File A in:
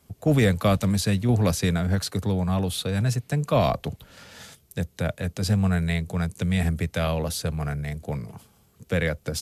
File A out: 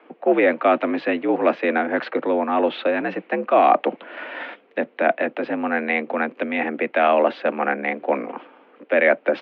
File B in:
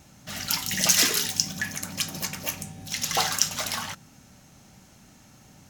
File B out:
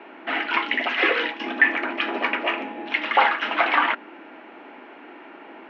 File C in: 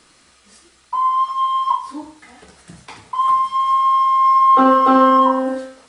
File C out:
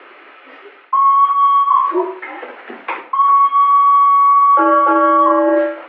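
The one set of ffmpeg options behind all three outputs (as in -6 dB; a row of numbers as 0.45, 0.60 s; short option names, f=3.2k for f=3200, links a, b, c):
-af "areverse,acompressor=threshold=-26dB:ratio=6,areverse,apsyclip=20dB,highpass=f=260:t=q:w=0.5412,highpass=f=260:t=q:w=1.307,lowpass=f=2.6k:t=q:w=0.5176,lowpass=f=2.6k:t=q:w=0.7071,lowpass=f=2.6k:t=q:w=1.932,afreqshift=63,volume=-4dB"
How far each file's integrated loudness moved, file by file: +4.0, +3.0, +3.5 LU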